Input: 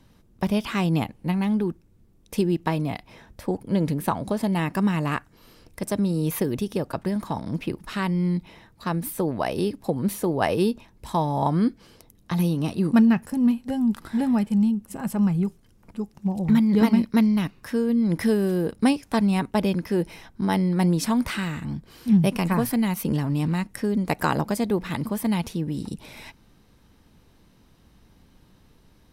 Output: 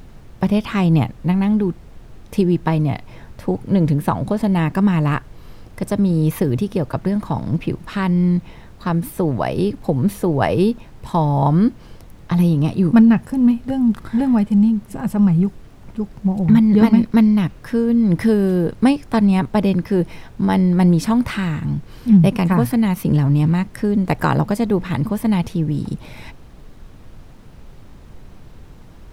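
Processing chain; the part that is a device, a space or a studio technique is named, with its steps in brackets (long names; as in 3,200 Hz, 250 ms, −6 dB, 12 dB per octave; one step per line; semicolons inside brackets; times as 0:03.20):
car interior (parametric band 120 Hz +8.5 dB; high-shelf EQ 3,700 Hz −7.5 dB; brown noise bed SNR 21 dB)
level +5 dB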